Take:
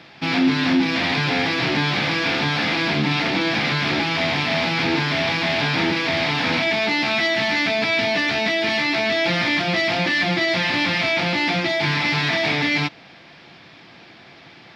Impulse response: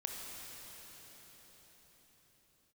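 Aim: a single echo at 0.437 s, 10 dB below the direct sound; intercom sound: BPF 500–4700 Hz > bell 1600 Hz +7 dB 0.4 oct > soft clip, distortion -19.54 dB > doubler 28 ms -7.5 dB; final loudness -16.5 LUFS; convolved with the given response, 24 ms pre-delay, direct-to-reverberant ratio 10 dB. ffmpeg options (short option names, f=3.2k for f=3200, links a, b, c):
-filter_complex "[0:a]aecho=1:1:437:0.316,asplit=2[a][b];[1:a]atrim=start_sample=2205,adelay=24[c];[b][c]afir=irnorm=-1:irlink=0,volume=-10.5dB[d];[a][d]amix=inputs=2:normalize=0,highpass=500,lowpass=4.7k,equalizer=f=1.6k:t=o:w=0.4:g=7,asoftclip=threshold=-13dB,asplit=2[e][f];[f]adelay=28,volume=-7.5dB[g];[e][g]amix=inputs=2:normalize=0,volume=3dB"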